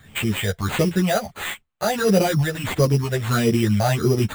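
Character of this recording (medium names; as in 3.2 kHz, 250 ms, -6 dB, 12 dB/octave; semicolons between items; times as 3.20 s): phasing stages 6, 1.5 Hz, lowest notch 270–1600 Hz; aliases and images of a low sample rate 5.4 kHz, jitter 0%; a shimmering, thickened sound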